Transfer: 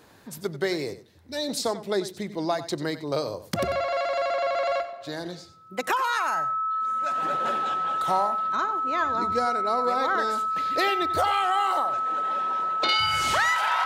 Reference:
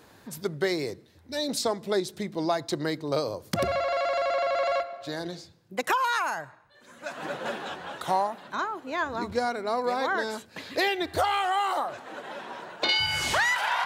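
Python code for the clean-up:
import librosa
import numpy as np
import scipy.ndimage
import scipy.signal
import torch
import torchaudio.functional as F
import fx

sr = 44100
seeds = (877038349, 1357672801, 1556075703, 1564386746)

y = fx.fix_declip(x, sr, threshold_db=-14.5)
y = fx.notch(y, sr, hz=1300.0, q=30.0)
y = fx.fix_echo_inverse(y, sr, delay_ms=93, level_db=-14.0)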